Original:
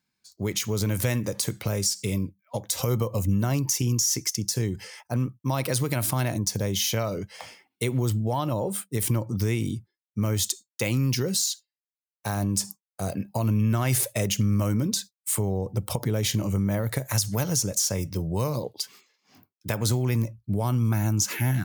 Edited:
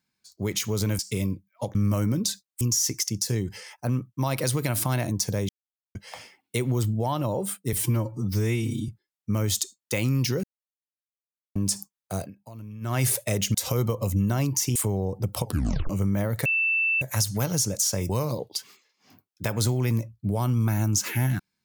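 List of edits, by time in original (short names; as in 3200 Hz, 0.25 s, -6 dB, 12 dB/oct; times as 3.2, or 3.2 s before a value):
0.99–1.91 cut
2.67–3.88 swap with 14.43–15.29
6.76–7.22 mute
9–9.77 stretch 1.5×
11.32–12.44 mute
13.05–13.84 dip -17 dB, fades 0.15 s
15.97 tape stop 0.46 s
16.99 add tone 2660 Hz -20.5 dBFS 0.56 s
18.07–18.34 cut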